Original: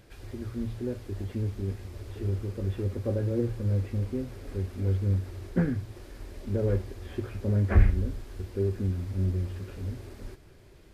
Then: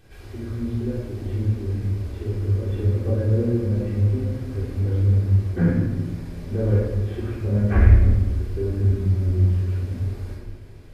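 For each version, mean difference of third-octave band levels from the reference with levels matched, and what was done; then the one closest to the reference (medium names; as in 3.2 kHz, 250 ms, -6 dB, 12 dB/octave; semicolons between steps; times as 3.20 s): 4.5 dB: simulated room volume 870 m³, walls mixed, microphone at 3.6 m; trim -3 dB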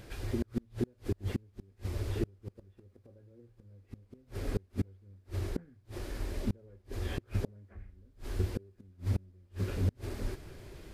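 12.5 dB: inverted gate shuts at -25 dBFS, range -35 dB; trim +5.5 dB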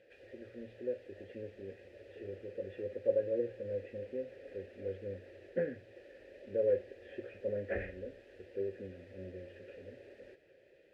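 7.0 dB: vowel filter e; trim +5.5 dB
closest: first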